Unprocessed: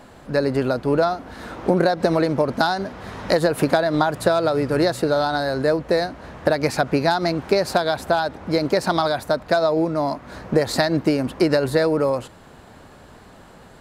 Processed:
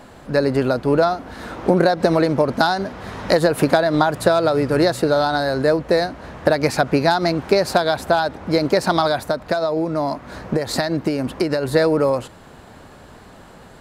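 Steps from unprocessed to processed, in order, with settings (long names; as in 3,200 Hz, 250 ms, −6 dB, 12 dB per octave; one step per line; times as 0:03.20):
0:09.29–0:11.73: downward compressor, threshold −19 dBFS, peak gain reduction 7 dB
level +2.5 dB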